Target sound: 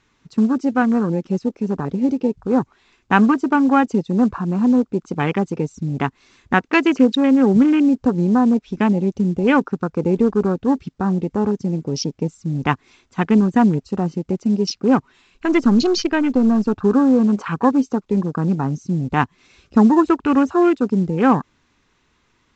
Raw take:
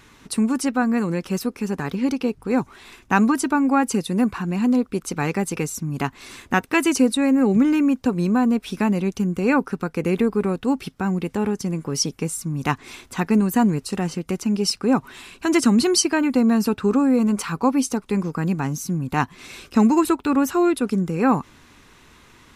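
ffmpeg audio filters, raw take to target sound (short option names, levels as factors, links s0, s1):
-filter_complex "[0:a]asettb=1/sr,asplit=3[s0][s1][s2];[s0]atrim=end=15.124[s3];[s1]atrim=start=15.12:end=16.82,asetpts=PTS-STARTPTS,afade=t=in:d=0.004:c=qsin,afade=t=out:st=1.696:d=0.004:c=qsin,aeval=exprs='if(lt(val(0),0),0.708*val(0),val(0))':c=same[s4];[s2]atrim=start=16.816[s5];[s3][s4]acrossfade=d=0.004:c1=hsin:c2=qsin[s6];[s6][s5]acrossfade=d=0.004:c1=qsin:c2=hsin,acrossover=split=4300[s7][s8];[s8]alimiter=limit=0.106:level=0:latency=1:release=383[s9];[s7][s9]amix=inputs=2:normalize=0,afwtdn=0.0282,volume=1.5" -ar 16000 -c:a pcm_mulaw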